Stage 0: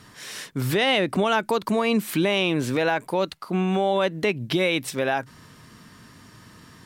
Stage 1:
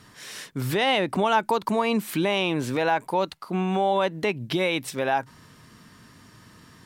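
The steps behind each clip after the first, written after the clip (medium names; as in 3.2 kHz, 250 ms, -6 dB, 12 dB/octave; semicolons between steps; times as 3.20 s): dynamic bell 890 Hz, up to +7 dB, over -40 dBFS, Q 2.7; trim -2.5 dB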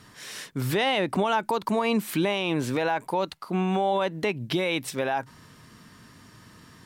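peak limiter -15.5 dBFS, peak gain reduction 4.5 dB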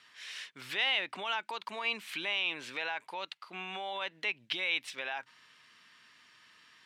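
band-pass filter 2.7 kHz, Q 1.5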